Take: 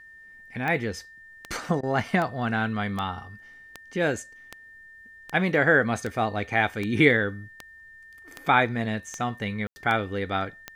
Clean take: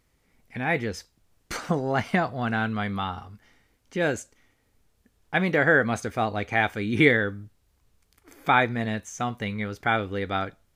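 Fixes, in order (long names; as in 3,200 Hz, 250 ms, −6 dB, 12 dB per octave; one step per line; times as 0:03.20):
click removal
notch filter 1,800 Hz, Q 30
ambience match 0:09.67–0:09.76
repair the gap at 0:01.81, 20 ms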